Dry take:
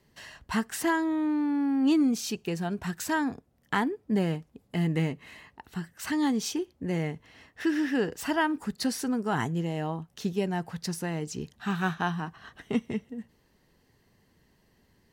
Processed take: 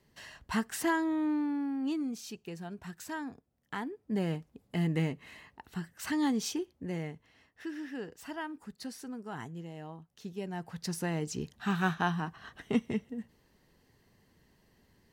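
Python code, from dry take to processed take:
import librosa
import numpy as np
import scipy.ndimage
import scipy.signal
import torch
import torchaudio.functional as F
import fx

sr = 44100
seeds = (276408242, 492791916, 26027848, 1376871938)

y = fx.gain(x, sr, db=fx.line((1.33, -3.0), (1.98, -11.0), (3.78, -11.0), (4.37, -3.0), (6.48, -3.0), (7.68, -13.0), (10.21, -13.0), (11.04, -1.0)))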